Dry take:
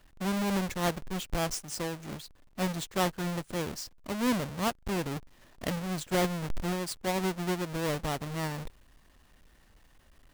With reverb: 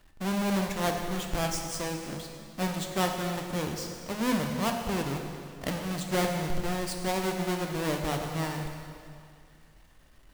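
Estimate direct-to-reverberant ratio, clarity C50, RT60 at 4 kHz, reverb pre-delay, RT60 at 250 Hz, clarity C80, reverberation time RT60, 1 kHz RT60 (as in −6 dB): 3.0 dB, 4.5 dB, 2.1 s, 6 ms, 2.3 s, 5.5 dB, 2.3 s, 2.3 s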